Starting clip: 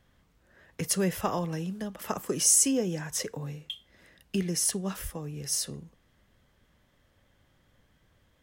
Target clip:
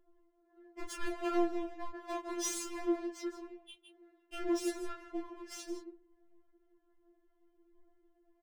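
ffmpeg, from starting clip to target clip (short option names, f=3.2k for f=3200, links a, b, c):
-filter_complex "[0:a]equalizer=f=310:w=0.45:g=10,acrossover=split=310|4300[a][b][c];[c]alimiter=limit=-16.5dB:level=0:latency=1:release=365[d];[a][b][d]amix=inputs=3:normalize=0,adynamicsmooth=sensitivity=4.5:basefreq=890,aphaser=in_gain=1:out_gain=1:delay=3.7:decay=0.26:speed=0.51:type=triangular,aecho=1:1:162:0.251,asettb=1/sr,asplit=3[e][f][g];[e]atrim=end=2.624[h];[f]atrim=start=2.62:end=3.72,asetpts=PTS-STARTPTS,afade=t=in:d=0.004:c=qsin,afade=t=out:st=1.096:d=0.004:c=qsin,tremolo=f=79:d=0.788[i];[g]atrim=start=3.716[j];[h][i]acrossfade=d=0.004:c1=hsin:c2=qsin[k];[k][j]acrossfade=d=0.004:c1=qsin:c2=hsin,asoftclip=type=hard:threshold=-26dB,flanger=delay=22.5:depth=4.1:speed=1.5,afftfilt=real='re*4*eq(mod(b,16),0)':imag='im*4*eq(mod(b,16),0)':win_size=2048:overlap=0.75"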